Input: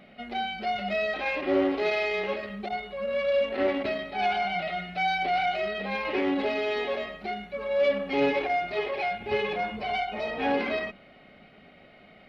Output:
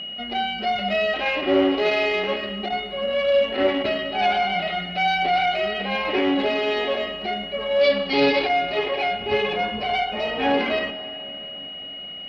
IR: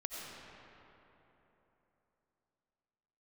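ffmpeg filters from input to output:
-filter_complex "[0:a]asettb=1/sr,asplit=3[link_01][link_02][link_03];[link_01]atrim=end=7.814[link_04];[link_02]atrim=start=7.81:end=8.49,asetpts=PTS-STARTPTS,afade=type=in:duration=0.004:curve=qsin,afade=type=out:start_time=0.676:duration=0.004:curve=qsin,lowpass=frequency=4600:width_type=q:width=5.4[link_05];[link_03]atrim=start=8.486[link_06];[link_04][link_05]acrossfade=duration=0.004:curve1=hsin:curve2=qsin[link_07];[link_07][link_06]acrossfade=duration=0.004:curve1=qsin:curve2=hsin,aeval=exprs='val(0)+0.0158*sin(2*PI*2900*n/s)':channel_layout=same,asplit=2[link_08][link_09];[1:a]atrim=start_sample=2205[link_10];[link_09][link_10]afir=irnorm=-1:irlink=0,volume=-11.5dB[link_11];[link_08][link_11]amix=inputs=2:normalize=0,volume=4dB"

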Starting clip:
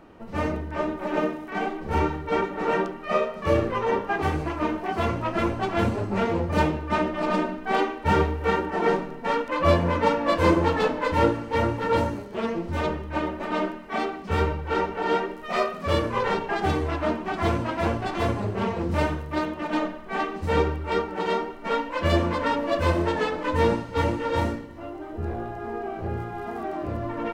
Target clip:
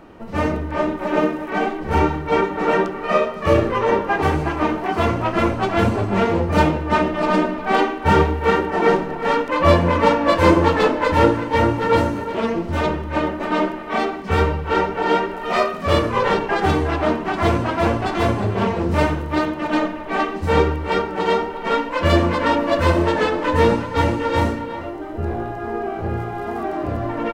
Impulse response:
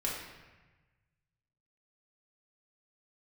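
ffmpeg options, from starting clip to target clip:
-filter_complex "[0:a]asplit=2[link_01][link_02];[link_02]adelay=360,highpass=300,lowpass=3400,asoftclip=type=hard:threshold=-16.5dB,volume=-10dB[link_03];[link_01][link_03]amix=inputs=2:normalize=0,asplit=2[link_04][link_05];[1:a]atrim=start_sample=2205,asetrate=27342,aresample=44100,adelay=20[link_06];[link_05][link_06]afir=irnorm=-1:irlink=0,volume=-24.5dB[link_07];[link_04][link_07]amix=inputs=2:normalize=0,volume=6dB"

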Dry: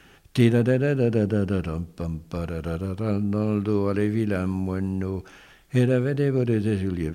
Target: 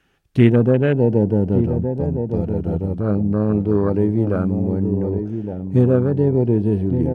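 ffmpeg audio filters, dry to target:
ffmpeg -i in.wav -filter_complex "[0:a]highshelf=frequency=5000:gain=-3.5,asplit=2[link_01][link_02];[link_02]adelay=1166,volume=-7dB,highshelf=frequency=4000:gain=-26.2[link_03];[link_01][link_03]amix=inputs=2:normalize=0,afwtdn=0.0282,volume=5.5dB" out.wav

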